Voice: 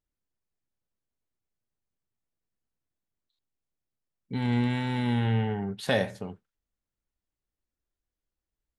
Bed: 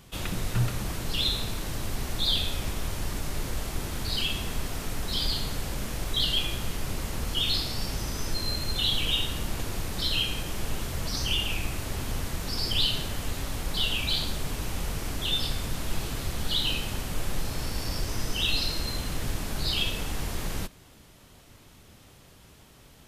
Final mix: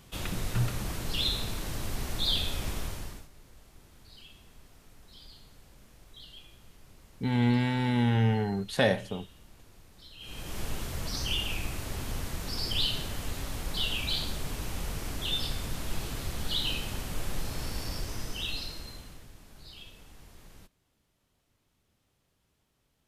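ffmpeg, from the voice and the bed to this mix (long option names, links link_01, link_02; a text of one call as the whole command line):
ffmpeg -i stem1.wav -i stem2.wav -filter_complex "[0:a]adelay=2900,volume=1dB[link_01];[1:a]volume=17.5dB,afade=type=out:start_time=2.77:duration=0.51:silence=0.0891251,afade=type=in:start_time=10.19:duration=0.4:silence=0.1,afade=type=out:start_time=17.73:duration=1.55:silence=0.133352[link_02];[link_01][link_02]amix=inputs=2:normalize=0" out.wav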